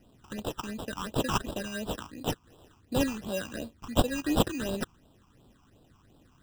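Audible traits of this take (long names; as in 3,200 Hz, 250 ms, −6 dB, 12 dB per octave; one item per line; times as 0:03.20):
aliases and images of a low sample rate 2,200 Hz, jitter 0%
phaser sweep stages 8, 2.8 Hz, lowest notch 520–2,000 Hz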